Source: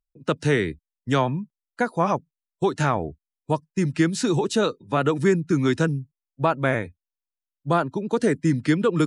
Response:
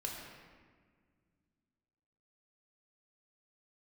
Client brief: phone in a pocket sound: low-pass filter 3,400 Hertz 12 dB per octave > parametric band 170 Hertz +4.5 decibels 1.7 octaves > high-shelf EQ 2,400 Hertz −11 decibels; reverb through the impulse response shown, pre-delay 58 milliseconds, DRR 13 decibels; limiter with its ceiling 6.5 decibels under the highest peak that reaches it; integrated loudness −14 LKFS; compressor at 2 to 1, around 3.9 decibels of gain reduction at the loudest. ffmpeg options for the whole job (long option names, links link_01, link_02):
-filter_complex "[0:a]acompressor=threshold=-22dB:ratio=2,alimiter=limit=-17.5dB:level=0:latency=1,asplit=2[link_01][link_02];[1:a]atrim=start_sample=2205,adelay=58[link_03];[link_02][link_03]afir=irnorm=-1:irlink=0,volume=-13.5dB[link_04];[link_01][link_04]amix=inputs=2:normalize=0,lowpass=3400,equalizer=frequency=170:width_type=o:width=1.7:gain=4.5,highshelf=frequency=2400:gain=-11,volume=13dB"